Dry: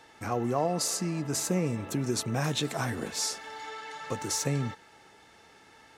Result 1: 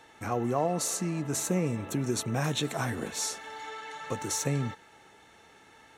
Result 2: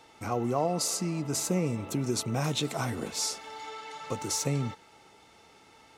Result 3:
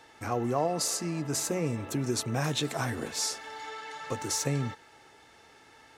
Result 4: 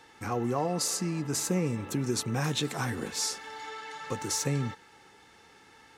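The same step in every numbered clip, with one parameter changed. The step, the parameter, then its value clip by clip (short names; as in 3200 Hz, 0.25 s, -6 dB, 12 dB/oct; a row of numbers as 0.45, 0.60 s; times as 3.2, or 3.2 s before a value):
notch, frequency: 4900, 1700, 190, 640 Hz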